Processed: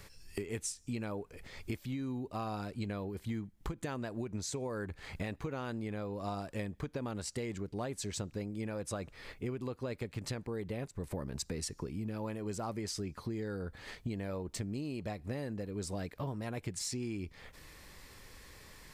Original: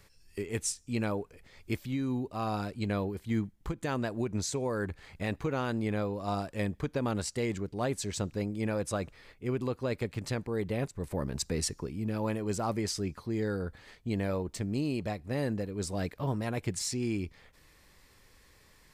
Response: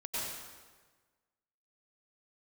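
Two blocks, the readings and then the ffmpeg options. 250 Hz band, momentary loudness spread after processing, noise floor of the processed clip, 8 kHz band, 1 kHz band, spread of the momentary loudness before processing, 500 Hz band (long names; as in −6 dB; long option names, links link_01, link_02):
−6.0 dB, 6 LU, −59 dBFS, −4.5 dB, −6.5 dB, 5 LU, −6.5 dB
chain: -af "acompressor=threshold=-42dB:ratio=8,volume=6.5dB"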